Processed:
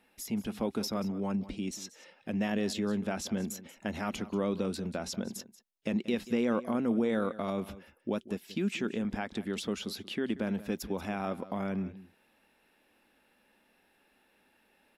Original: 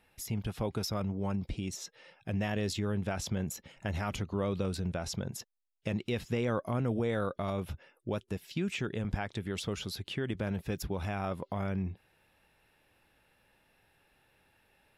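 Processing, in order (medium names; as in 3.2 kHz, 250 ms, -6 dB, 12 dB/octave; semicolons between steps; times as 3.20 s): resonant low shelf 170 Hz -8.5 dB, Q 3; delay 184 ms -16.5 dB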